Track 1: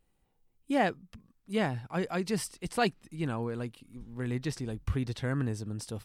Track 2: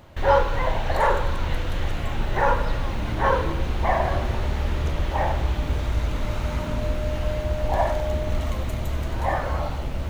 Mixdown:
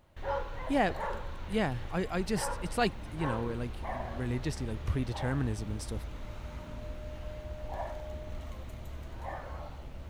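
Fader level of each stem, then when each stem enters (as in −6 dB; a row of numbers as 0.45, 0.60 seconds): −1.0, −16.0 decibels; 0.00, 0.00 seconds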